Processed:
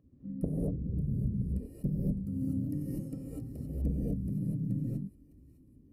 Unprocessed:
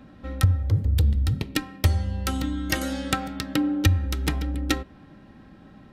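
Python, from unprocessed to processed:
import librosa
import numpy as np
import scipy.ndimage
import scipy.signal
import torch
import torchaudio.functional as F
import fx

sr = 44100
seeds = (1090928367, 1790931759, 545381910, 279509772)

y = scipy.signal.sosfilt(scipy.signal.ellip(3, 1.0, 50, [200.0, 9700.0], 'bandstop', fs=sr, output='sos'), x)
y = fx.air_absorb(y, sr, metres=400.0)
y = 10.0 ** (-13.5 / 20.0) * np.tanh(y / 10.0 ** (-13.5 / 20.0))
y = fx.spec_gate(y, sr, threshold_db=-10, keep='weak')
y = fx.highpass(y, sr, hz=130.0, slope=6)
y = fx.high_shelf(y, sr, hz=3500.0, db=-9.5)
y = y + 0.63 * np.pad(y, (int(1.7 * sr / 1000.0), 0))[:len(y)]
y = fx.echo_wet_highpass(y, sr, ms=608, feedback_pct=47, hz=1500.0, wet_db=-15)
y = fx.rev_gated(y, sr, seeds[0], gate_ms=270, shape='rising', drr_db=-7.0)
y = fx.rider(y, sr, range_db=4, speed_s=0.5)
y = F.gain(torch.from_numpy(y), 7.0).numpy()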